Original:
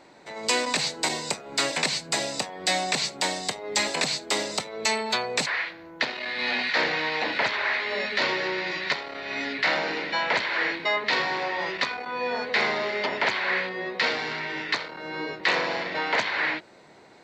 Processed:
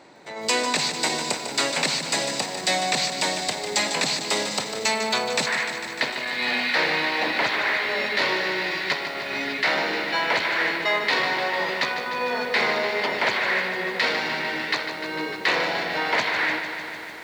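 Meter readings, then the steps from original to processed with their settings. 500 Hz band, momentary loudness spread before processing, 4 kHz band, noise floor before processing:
+2.5 dB, 6 LU, +2.5 dB, −51 dBFS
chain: in parallel at −9 dB: soft clipping −26 dBFS, distortion −9 dB
on the sum: high-pass filter 60 Hz
feedback echo at a low word length 150 ms, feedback 80%, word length 8 bits, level −9 dB

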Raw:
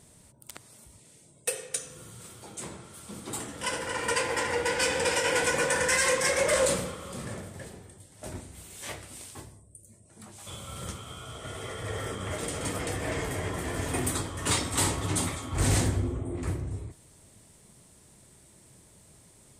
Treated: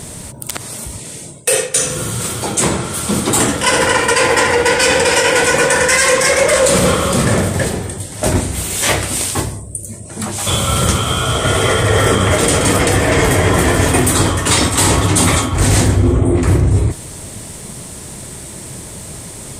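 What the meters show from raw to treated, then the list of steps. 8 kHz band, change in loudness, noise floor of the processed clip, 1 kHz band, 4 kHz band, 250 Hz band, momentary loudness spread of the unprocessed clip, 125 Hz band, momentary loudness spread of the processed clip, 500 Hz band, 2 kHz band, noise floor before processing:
+16.5 dB, +16.0 dB, −31 dBFS, +17.0 dB, +17.0 dB, +19.0 dB, 20 LU, +18.5 dB, 18 LU, +16.5 dB, +15.5 dB, −57 dBFS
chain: reversed playback
downward compressor 16 to 1, threshold −34 dBFS, peak gain reduction 14.5 dB
reversed playback
boost into a limiter +27 dB
level −1 dB

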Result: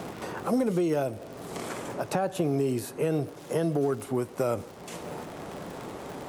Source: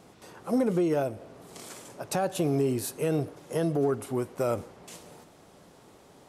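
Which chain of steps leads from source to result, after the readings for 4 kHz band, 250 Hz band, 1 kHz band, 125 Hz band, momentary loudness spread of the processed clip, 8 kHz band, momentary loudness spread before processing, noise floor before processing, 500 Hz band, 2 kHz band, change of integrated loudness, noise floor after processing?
+0.5 dB, 0.0 dB, +2.0 dB, 0.0 dB, 13 LU, −2.0 dB, 19 LU, −56 dBFS, +0.5 dB, +2.5 dB, −1.5 dB, −45 dBFS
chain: surface crackle 130 per second −43 dBFS
multiband upward and downward compressor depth 70%

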